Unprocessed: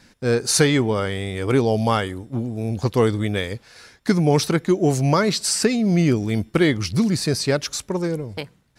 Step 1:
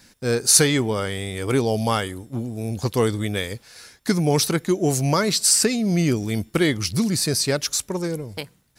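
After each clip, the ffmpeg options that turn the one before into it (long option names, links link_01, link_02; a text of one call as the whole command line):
ffmpeg -i in.wav -af "aemphasis=mode=production:type=50kf,volume=-2.5dB" out.wav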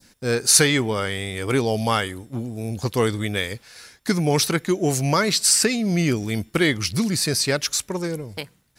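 ffmpeg -i in.wav -af "adynamicequalizer=threshold=0.02:dfrequency=2100:dqfactor=0.7:tfrequency=2100:tqfactor=0.7:attack=5:release=100:ratio=0.375:range=2.5:mode=boostabove:tftype=bell,volume=-1dB" out.wav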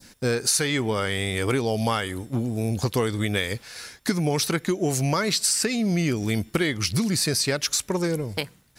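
ffmpeg -i in.wav -af "acompressor=threshold=-25dB:ratio=6,volume=4.5dB" out.wav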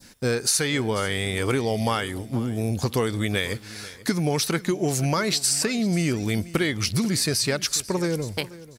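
ffmpeg -i in.wav -af "aecho=1:1:490|980:0.126|0.0227" out.wav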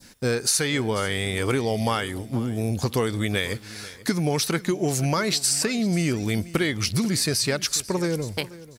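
ffmpeg -i in.wav -af "acrusher=bits=11:mix=0:aa=0.000001" out.wav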